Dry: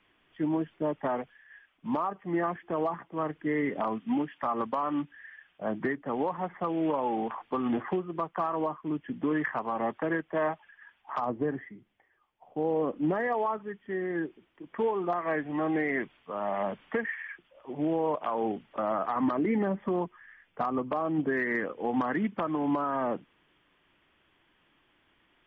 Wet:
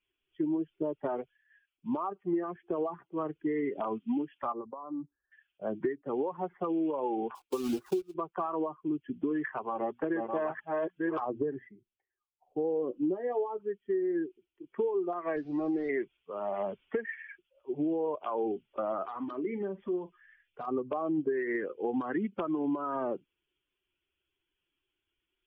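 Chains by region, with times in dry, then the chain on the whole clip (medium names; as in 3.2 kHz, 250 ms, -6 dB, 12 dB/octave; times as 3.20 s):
4.52–5.32 s: steep low-pass 1.2 kHz + compression 4:1, threshold -34 dBFS
7.35–8.15 s: block-companded coder 3-bit + upward expansion, over -41 dBFS
9.46–11.67 s: chunks repeated in reverse 572 ms, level -1 dB + hum notches 60/120/180/240 Hz
12.87–13.60 s: dynamic bell 1.6 kHz, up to -7 dB, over -46 dBFS, Q 1.2 + doubling 16 ms -8 dB
15.36–15.89 s: one-bit delta coder 32 kbps, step -42 dBFS + treble shelf 2.3 kHz -11 dB
19.06–20.68 s: compression 4:1, threshold -33 dBFS + treble shelf 2.1 kHz +7.5 dB + doubling 44 ms -11 dB
whole clip: expander on every frequency bin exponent 1.5; peaking EQ 380 Hz +14 dB 0.66 oct; compression 6:1, threshold -28 dBFS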